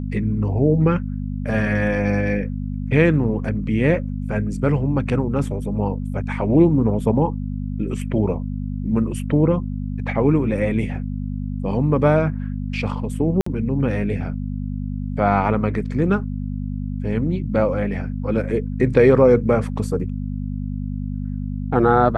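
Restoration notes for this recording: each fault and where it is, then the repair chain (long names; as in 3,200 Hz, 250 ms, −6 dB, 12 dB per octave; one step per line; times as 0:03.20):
mains hum 50 Hz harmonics 5 −26 dBFS
0:13.41–0:13.46: drop-out 54 ms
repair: hum removal 50 Hz, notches 5
repair the gap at 0:13.41, 54 ms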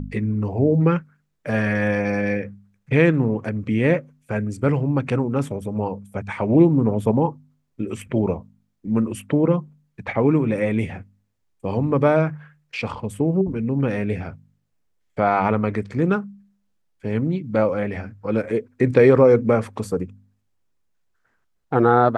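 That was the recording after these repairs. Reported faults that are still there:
none of them is left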